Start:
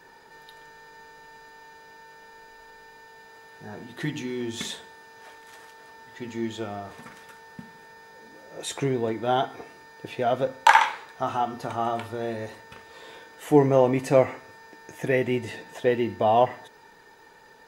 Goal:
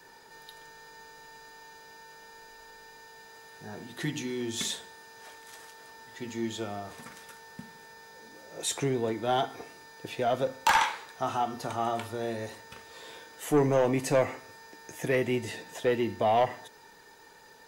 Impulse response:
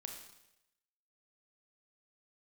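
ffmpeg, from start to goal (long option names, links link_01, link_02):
-filter_complex "[0:a]acrossover=split=370|690|4100[link_01][link_02][link_03][link_04];[link_04]acontrast=85[link_05];[link_01][link_02][link_03][link_05]amix=inputs=4:normalize=0,asoftclip=type=tanh:threshold=-14dB,volume=-2.5dB"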